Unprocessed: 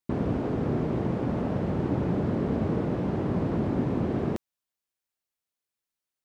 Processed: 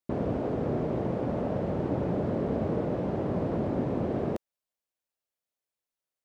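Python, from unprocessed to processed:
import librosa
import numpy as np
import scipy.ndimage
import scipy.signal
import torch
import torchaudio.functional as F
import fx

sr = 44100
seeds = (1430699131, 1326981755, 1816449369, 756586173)

y = fx.peak_eq(x, sr, hz=580.0, db=7.5, octaves=0.92)
y = y * librosa.db_to_amplitude(-4.0)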